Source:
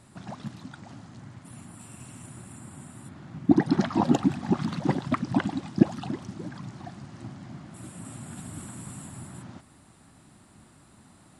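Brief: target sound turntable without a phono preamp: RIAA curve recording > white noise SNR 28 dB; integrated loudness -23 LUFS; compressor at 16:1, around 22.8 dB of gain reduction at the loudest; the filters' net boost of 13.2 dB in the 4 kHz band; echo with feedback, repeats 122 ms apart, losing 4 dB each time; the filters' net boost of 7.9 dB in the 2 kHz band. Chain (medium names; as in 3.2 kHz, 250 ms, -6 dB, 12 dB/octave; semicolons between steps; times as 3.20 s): peaking EQ 2 kHz +5.5 dB; peaking EQ 4 kHz +7 dB; compression 16:1, threshold -35 dBFS; RIAA curve recording; feedback delay 122 ms, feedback 63%, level -4 dB; white noise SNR 28 dB; trim +13.5 dB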